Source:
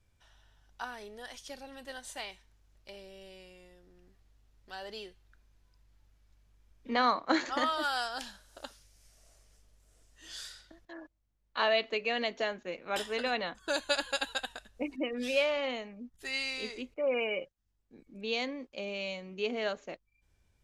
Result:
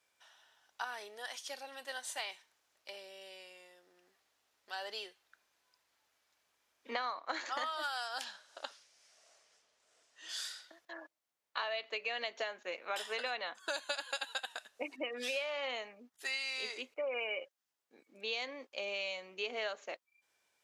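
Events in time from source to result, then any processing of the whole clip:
0:08.24–0:10.29: low-pass filter 5,900 Hz
whole clip: high-pass filter 620 Hz 12 dB per octave; downward compressor 10 to 1, threshold −37 dBFS; level +3 dB

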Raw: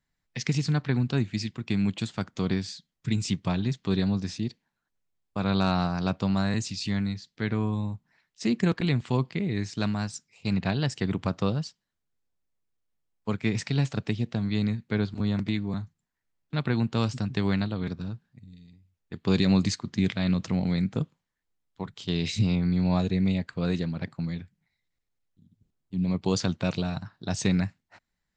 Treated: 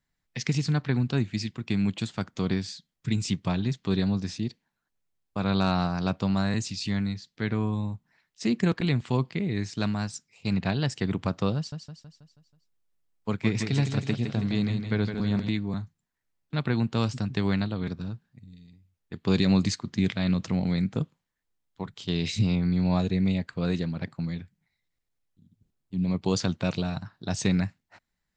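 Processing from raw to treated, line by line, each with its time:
0:11.56–0:15.49: repeating echo 161 ms, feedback 51%, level −7 dB

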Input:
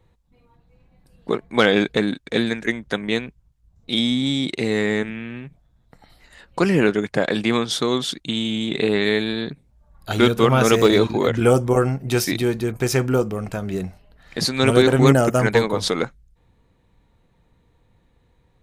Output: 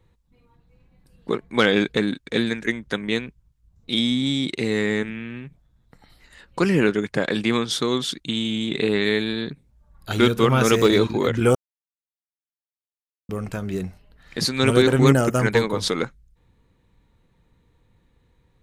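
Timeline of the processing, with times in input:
0:11.55–0:13.29: silence
whole clip: parametric band 690 Hz −5.5 dB 0.64 octaves; level −1 dB

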